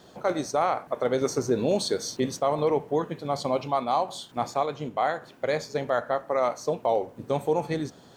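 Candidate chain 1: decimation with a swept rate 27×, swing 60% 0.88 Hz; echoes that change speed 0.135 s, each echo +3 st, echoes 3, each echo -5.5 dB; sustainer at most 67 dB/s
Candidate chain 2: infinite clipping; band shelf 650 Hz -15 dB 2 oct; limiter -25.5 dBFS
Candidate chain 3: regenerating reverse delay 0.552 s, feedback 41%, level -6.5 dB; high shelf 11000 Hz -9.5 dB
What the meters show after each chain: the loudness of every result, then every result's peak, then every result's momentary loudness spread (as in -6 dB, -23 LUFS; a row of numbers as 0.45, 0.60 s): -25.0, -32.5, -26.5 LUFS; -10.0, -25.5, -11.0 dBFS; 4, 4, 5 LU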